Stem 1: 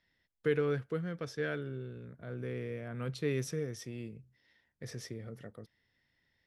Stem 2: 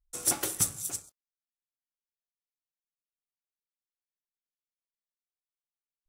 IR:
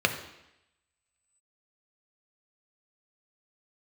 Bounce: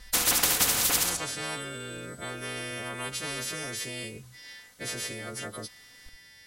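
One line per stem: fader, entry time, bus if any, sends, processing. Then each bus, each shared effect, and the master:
-19.0 dB, 0.00 s, no send, no echo send, partials quantised in pitch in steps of 2 st; treble shelf 5.6 kHz +11 dB
-1.0 dB, 0.00 s, send -21 dB, echo send -9.5 dB, comb 4 ms, depth 91%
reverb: on, RT60 0.85 s, pre-delay 3 ms
echo: delay 72 ms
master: low-pass 11 kHz 12 dB/octave; spectrum-flattening compressor 10:1

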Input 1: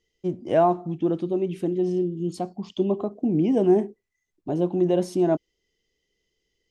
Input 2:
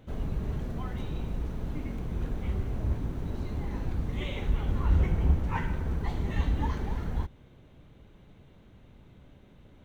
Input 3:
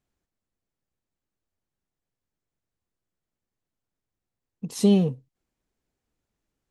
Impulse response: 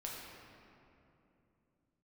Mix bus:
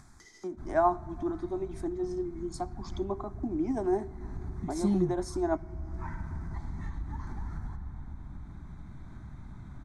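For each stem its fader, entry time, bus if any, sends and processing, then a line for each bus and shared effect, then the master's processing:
+1.5 dB, 0.20 s, send -19.5 dB, high-pass 300 Hz 24 dB/octave; tremolo 12 Hz, depth 38%
-11.0 dB, 0.50 s, send -3.5 dB, compression, threshold -30 dBFS, peak gain reduction 12.5 dB
-6.5 dB, 0.00 s, no send, none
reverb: on, RT60 2.9 s, pre-delay 6 ms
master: low-pass 9.6 kHz 24 dB/octave; upward compressor, threshold -27 dBFS; static phaser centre 1.2 kHz, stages 4

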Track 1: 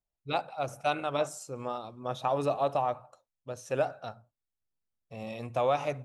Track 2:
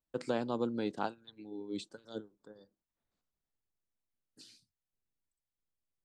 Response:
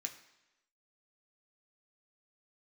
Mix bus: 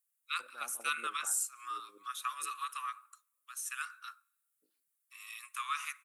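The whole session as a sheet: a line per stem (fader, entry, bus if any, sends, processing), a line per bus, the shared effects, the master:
+1.5 dB, 0.00 s, send -17.5 dB, steep high-pass 1.1 kHz 96 dB/octave; resonant high shelf 7.2 kHz +12 dB, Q 1.5
-8.5 dB, 0.25 s, send -5.5 dB, step-sequenced band-pass 11 Hz 460–1900 Hz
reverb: on, RT60 1.0 s, pre-delay 3 ms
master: none

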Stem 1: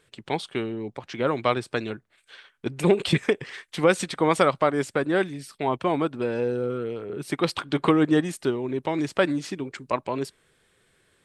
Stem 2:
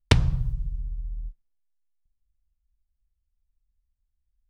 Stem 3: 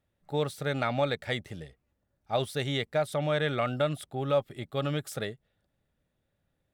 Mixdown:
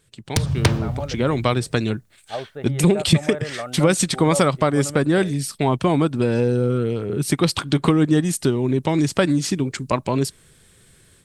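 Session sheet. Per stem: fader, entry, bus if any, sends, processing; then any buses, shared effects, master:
-4.5 dB, 0.00 s, bus A, no send, no echo send, none
+2.5 dB, 0.25 s, bus A, no send, echo send -11 dB, high-pass 93 Hz 24 dB/octave; tone controls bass -8 dB, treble -3 dB; sine folder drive 7 dB, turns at -5.5 dBFS; auto duck -9 dB, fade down 0.30 s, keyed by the first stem
-9.0 dB, 0.00 s, no bus, no send, no echo send, low-pass 1.2 kHz 12 dB/octave; bass shelf 190 Hz -9.5 dB
bus A: 0.0 dB, tone controls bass +12 dB, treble +11 dB; compression 2:1, threshold -26 dBFS, peak gain reduction 10 dB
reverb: none
echo: delay 286 ms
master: level rider gain up to 10 dB

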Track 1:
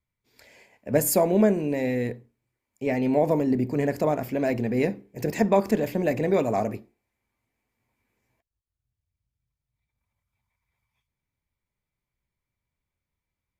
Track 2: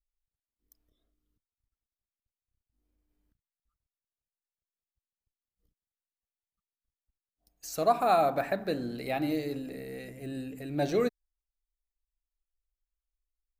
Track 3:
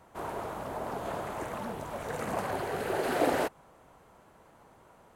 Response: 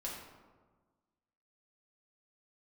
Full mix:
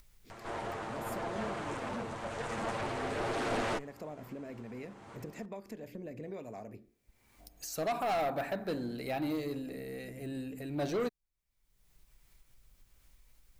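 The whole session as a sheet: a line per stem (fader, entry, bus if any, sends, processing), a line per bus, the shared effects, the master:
-12.0 dB, 0.00 s, no send, compression 2.5:1, threshold -30 dBFS, peak gain reduction 10.5 dB; rotary cabinet horn 1.2 Hz
-1.5 dB, 0.00 s, no send, none
+0.5 dB, 0.30 s, no send, comb filter that takes the minimum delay 8.8 ms; low-pass 8.5 kHz 24 dB/octave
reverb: none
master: upward compressor, threshold -39 dBFS; saturation -28 dBFS, distortion -9 dB

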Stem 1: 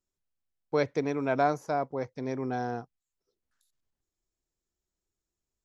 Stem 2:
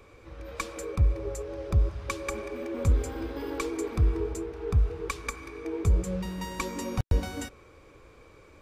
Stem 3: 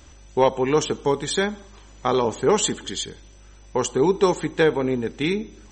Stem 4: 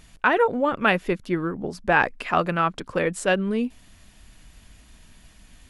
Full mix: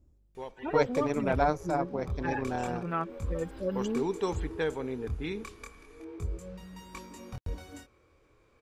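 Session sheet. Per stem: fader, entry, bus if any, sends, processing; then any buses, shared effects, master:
+2.0 dB, 0.00 s, no send, AM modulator 160 Hz, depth 50%
-8.5 dB, 0.35 s, no send, chorus 0.3 Hz, depth 4 ms
-12.5 dB, 0.00 s, no send, level-controlled noise filter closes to 310 Hz, open at -15.5 dBFS; auto duck -19 dB, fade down 0.70 s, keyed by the first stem
-8.0 dB, 0.35 s, no send, harmonic-percussive separation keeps harmonic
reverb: none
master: none

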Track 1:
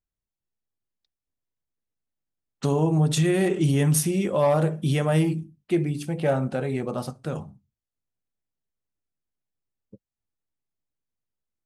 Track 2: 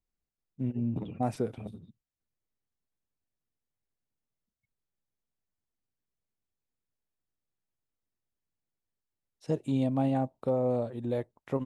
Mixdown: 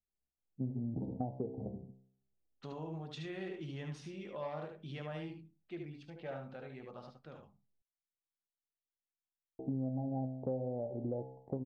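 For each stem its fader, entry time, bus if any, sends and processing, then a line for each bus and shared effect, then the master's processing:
-17.5 dB, 0.00 s, no send, echo send -5.5 dB, bass shelf 490 Hz -7 dB
+1.5 dB, 0.00 s, muted 7.82–9.59 s, no send, no echo send, elliptic low-pass 820 Hz, stop band 40 dB; level rider gain up to 8 dB; feedback comb 65 Hz, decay 0.62 s, harmonics all, mix 80%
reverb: none
echo: delay 74 ms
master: low-pass 4.5 kHz 24 dB/octave; compression 8:1, threshold -34 dBFS, peak gain reduction 15.5 dB

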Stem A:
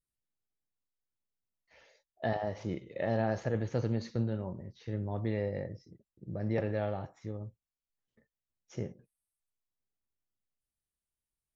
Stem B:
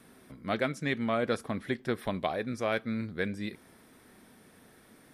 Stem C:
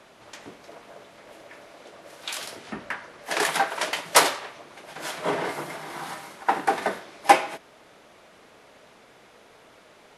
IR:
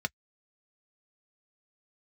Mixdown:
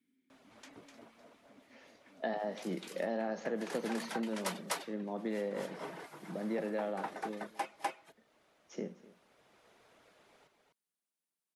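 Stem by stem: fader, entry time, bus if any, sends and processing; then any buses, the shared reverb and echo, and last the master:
0.0 dB, 0.00 s, no send, echo send -20.5 dB, steep high-pass 170 Hz 72 dB/octave
-16.5 dB, 0.00 s, no send, no echo send, peaking EQ 740 Hz -11.5 dB 0.53 oct; compressor with a negative ratio -37 dBFS; vowel filter i
-11.5 dB, 0.30 s, no send, echo send -6 dB, reverb removal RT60 0.52 s; auto duck -9 dB, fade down 0.85 s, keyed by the first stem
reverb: none
echo: delay 251 ms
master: compression, threshold -31 dBFS, peak gain reduction 6 dB

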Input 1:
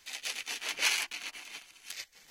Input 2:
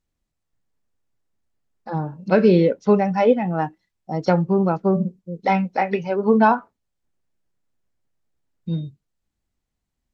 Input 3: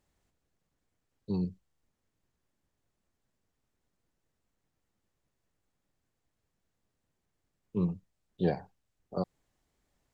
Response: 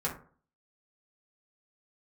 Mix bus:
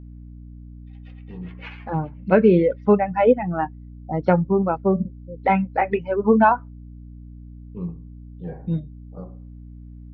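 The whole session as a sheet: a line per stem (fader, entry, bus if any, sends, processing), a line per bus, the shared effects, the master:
-9.0 dB, 0.80 s, send -5 dB, expander on every frequency bin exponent 2; tilt EQ -1.5 dB/octave
+1.0 dB, 0.00 s, no send, reverb removal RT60 2 s
-5.0 dB, 0.00 s, send -11.5 dB, auto duck -16 dB, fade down 0.80 s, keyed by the second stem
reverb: on, RT60 0.45 s, pre-delay 3 ms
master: low-pass 2.7 kHz 24 dB/octave; hum 60 Hz, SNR 17 dB

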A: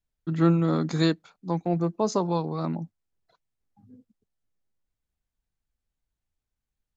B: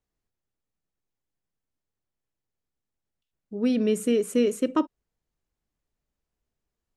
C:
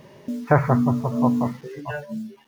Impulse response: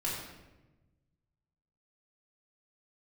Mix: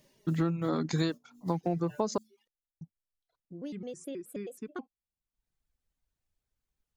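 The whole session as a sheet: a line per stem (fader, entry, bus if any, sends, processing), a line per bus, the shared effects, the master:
+1.5 dB, 0.00 s, muted 2.18–2.81 s, no bus, no send, reverb removal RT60 0.71 s; auto duck -22 dB, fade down 1.05 s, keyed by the second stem
-8.5 dB, 0.00 s, bus A, no send, vibrato with a chosen wave square 4.7 Hz, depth 250 cents
-19.0 dB, 0.00 s, bus A, no send, FFT filter 320 Hz 0 dB, 1.1 kHz -4 dB, 7.1 kHz +14 dB; compressor with a negative ratio -26 dBFS, ratio -0.5; flange 0.38 Hz, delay 3.2 ms, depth 8.7 ms, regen +57%
bus A: 0.0 dB, reverb removal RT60 1.3 s; compression 2:1, threshold -43 dBFS, peak gain reduction 9.5 dB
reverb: none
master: compression 12:1, threshold -25 dBFS, peak gain reduction 12 dB

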